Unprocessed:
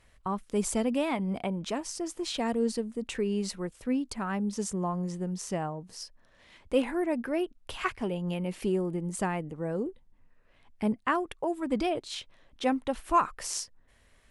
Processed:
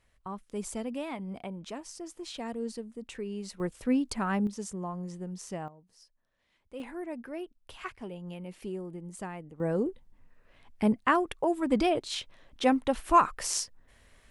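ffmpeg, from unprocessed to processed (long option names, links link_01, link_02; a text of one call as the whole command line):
ffmpeg -i in.wav -af "asetnsamples=nb_out_samples=441:pad=0,asendcmd='3.6 volume volume 2.5dB;4.47 volume volume -5.5dB;5.68 volume volume -17dB;6.8 volume volume -9dB;9.6 volume volume 3dB',volume=-7.5dB" out.wav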